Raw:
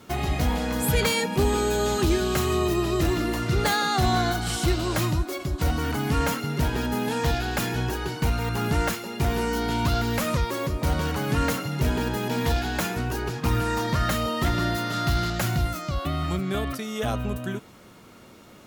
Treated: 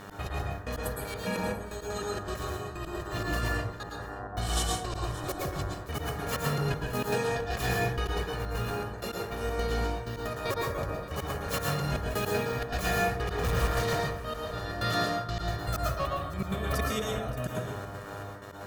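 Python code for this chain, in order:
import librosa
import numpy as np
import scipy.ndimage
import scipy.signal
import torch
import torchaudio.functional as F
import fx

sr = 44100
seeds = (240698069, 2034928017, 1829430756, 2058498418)

y = fx.low_shelf(x, sr, hz=360.0, db=-4.0, at=(11.51, 12.33))
y = fx.clip_hard(y, sr, threshold_db=-30.0, at=(13.1, 13.95), fade=0.02)
y = y + 0.63 * np.pad(y, (int(1.7 * sr / 1000.0), 0))[:len(y)]
y = fx.over_compress(y, sr, threshold_db=-28.0, ratio=-0.5)
y = fx.ellip_lowpass(y, sr, hz=1100.0, order=4, stop_db=40, at=(3.83, 4.29))
y = fx.dmg_buzz(y, sr, base_hz=100.0, harmonics=19, level_db=-41.0, tilt_db=-2, odd_only=False)
y = fx.step_gate(y, sr, bpm=158, pattern='x.xxx..x.xx', floor_db=-60.0, edge_ms=4.5)
y = y + 10.0 ** (-16.5 / 20.0) * np.pad(y, (int(575 * sr / 1000.0), 0))[:len(y)]
y = fx.rev_plate(y, sr, seeds[0], rt60_s=0.68, hf_ratio=0.5, predelay_ms=100, drr_db=-2.0)
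y = y * librosa.db_to_amplitude(-5.5)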